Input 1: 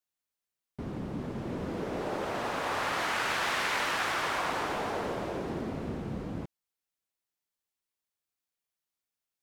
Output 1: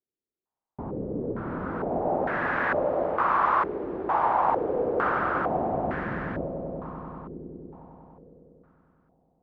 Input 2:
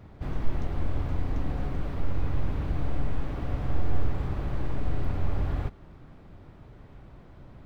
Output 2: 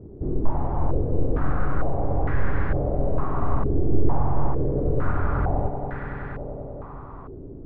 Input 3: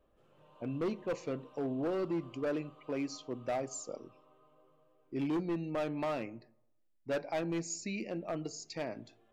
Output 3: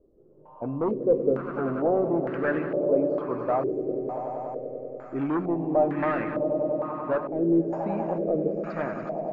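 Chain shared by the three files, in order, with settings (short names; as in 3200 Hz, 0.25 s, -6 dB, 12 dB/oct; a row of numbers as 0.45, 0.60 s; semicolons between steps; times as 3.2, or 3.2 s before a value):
swelling echo 96 ms, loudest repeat 5, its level -12 dB; stepped low-pass 2.2 Hz 390–1700 Hz; match loudness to -27 LUFS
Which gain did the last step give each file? +1.0, +4.5, +5.5 dB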